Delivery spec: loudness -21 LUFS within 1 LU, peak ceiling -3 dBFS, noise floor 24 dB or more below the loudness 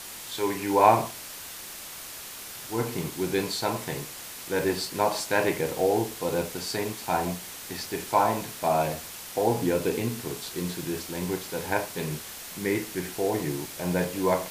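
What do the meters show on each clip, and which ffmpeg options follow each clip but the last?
noise floor -41 dBFS; noise floor target -53 dBFS; loudness -28.5 LUFS; peak -5.0 dBFS; loudness target -21.0 LUFS
-> -af "afftdn=nr=12:nf=-41"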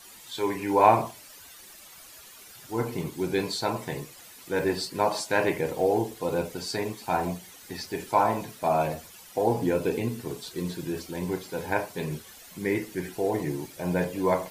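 noise floor -49 dBFS; noise floor target -52 dBFS
-> -af "afftdn=nr=6:nf=-49"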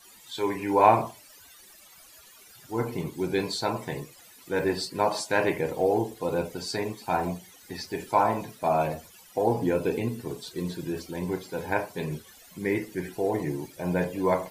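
noise floor -53 dBFS; loudness -28.0 LUFS; peak -5.0 dBFS; loudness target -21.0 LUFS
-> -af "volume=7dB,alimiter=limit=-3dB:level=0:latency=1"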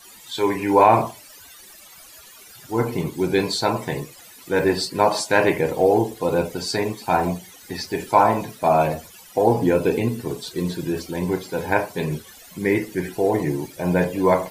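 loudness -21.5 LUFS; peak -3.0 dBFS; noise floor -46 dBFS

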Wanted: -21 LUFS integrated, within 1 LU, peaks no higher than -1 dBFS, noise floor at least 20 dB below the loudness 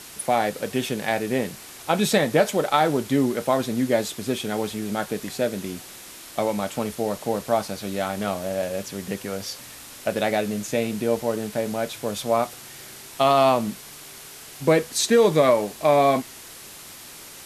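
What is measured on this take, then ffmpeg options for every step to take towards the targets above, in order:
noise floor -42 dBFS; noise floor target -44 dBFS; loudness -23.5 LUFS; peak -5.5 dBFS; loudness target -21.0 LUFS
-> -af "afftdn=nr=6:nf=-42"
-af "volume=2.5dB"

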